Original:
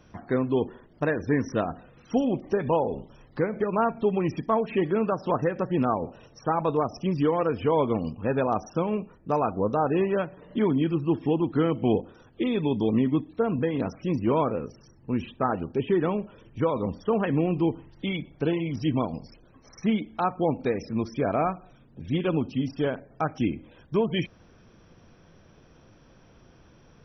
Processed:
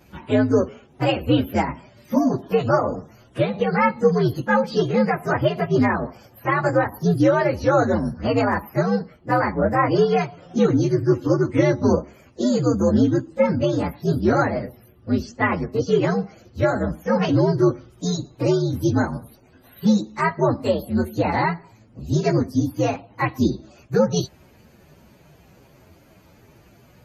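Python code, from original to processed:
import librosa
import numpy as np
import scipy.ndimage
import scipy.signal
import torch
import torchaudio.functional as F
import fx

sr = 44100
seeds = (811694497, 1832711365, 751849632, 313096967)

y = fx.partial_stretch(x, sr, pct=126)
y = scipy.signal.sosfilt(scipy.signal.butter(2, 60.0, 'highpass', fs=sr, output='sos'), y)
y = F.gain(torch.from_numpy(y), 8.5).numpy()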